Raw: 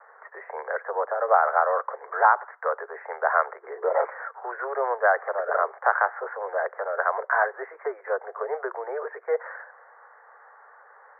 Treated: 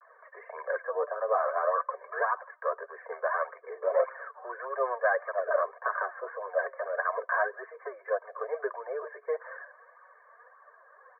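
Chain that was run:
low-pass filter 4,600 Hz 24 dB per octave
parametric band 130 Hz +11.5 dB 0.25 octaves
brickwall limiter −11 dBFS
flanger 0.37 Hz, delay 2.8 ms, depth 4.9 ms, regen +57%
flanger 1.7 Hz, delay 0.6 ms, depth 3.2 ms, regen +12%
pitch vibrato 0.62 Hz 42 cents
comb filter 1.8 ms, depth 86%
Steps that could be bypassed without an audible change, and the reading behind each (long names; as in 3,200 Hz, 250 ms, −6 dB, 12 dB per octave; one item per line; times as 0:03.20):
low-pass filter 4,600 Hz: nothing at its input above 2,200 Hz
parametric band 130 Hz: nothing at its input below 340 Hz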